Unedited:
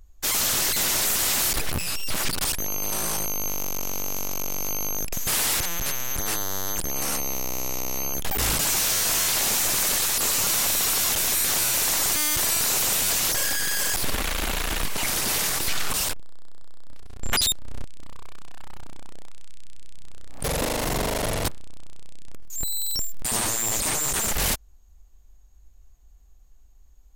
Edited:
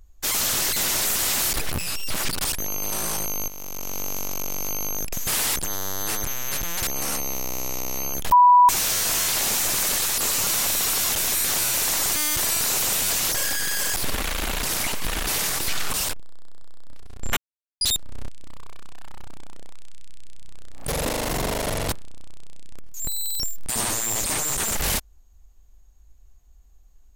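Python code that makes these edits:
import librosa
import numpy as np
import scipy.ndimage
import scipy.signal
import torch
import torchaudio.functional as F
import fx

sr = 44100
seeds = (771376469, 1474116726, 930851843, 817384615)

y = fx.edit(x, sr, fx.fade_in_from(start_s=3.48, length_s=0.54, floor_db=-12.0),
    fx.reverse_span(start_s=5.56, length_s=1.31),
    fx.bleep(start_s=8.32, length_s=0.37, hz=983.0, db=-9.5),
    fx.reverse_span(start_s=14.63, length_s=0.64),
    fx.insert_silence(at_s=17.37, length_s=0.44), tone=tone)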